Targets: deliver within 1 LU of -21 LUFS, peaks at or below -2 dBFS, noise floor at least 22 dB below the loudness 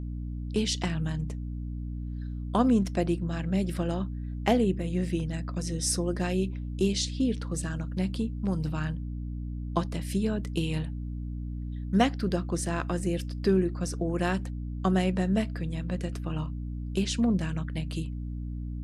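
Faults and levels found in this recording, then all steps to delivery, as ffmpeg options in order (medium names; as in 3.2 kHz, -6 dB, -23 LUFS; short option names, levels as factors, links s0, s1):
hum 60 Hz; highest harmonic 300 Hz; hum level -32 dBFS; loudness -30.0 LUFS; peak level -9.0 dBFS; loudness target -21.0 LUFS
-> -af "bandreject=f=60:t=h:w=4,bandreject=f=120:t=h:w=4,bandreject=f=180:t=h:w=4,bandreject=f=240:t=h:w=4,bandreject=f=300:t=h:w=4"
-af "volume=2.82,alimiter=limit=0.794:level=0:latency=1"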